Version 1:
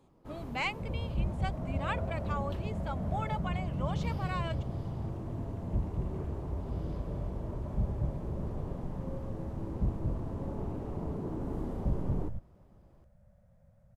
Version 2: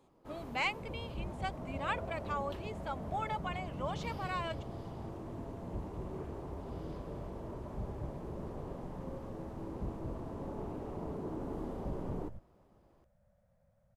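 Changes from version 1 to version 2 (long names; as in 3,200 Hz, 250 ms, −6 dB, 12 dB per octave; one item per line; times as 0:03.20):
second sound −3.5 dB
master: add bass and treble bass −7 dB, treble 0 dB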